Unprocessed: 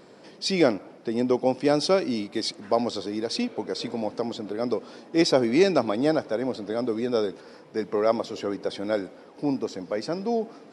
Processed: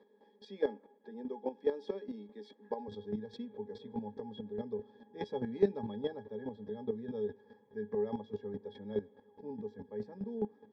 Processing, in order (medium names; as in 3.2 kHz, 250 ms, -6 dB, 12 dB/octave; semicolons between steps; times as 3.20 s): high-pass 260 Hz 24 dB/octave, from 2.88 s 52 Hz; pitch-class resonator G#, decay 0.12 s; square tremolo 4.8 Hz, depth 65%, duty 15%; trim +3.5 dB